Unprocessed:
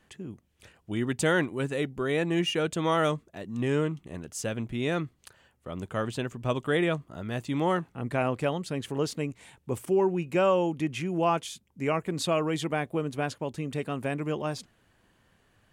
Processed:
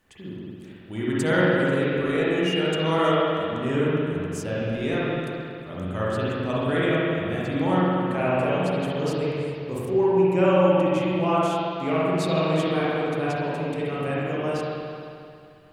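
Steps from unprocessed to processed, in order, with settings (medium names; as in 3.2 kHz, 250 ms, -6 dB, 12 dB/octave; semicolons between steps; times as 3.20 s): word length cut 12-bit, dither none; spring tank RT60 2.5 s, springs 44/55 ms, chirp 25 ms, DRR -8 dB; trim -3.5 dB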